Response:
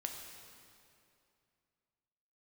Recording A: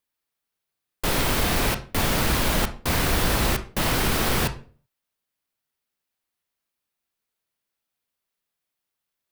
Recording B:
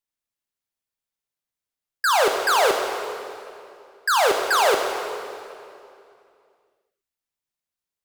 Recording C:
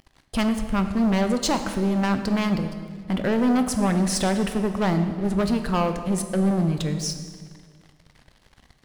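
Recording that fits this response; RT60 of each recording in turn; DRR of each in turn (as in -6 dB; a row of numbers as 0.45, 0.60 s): B; 0.40, 2.6, 1.8 s; 8.0, 2.0, 7.0 dB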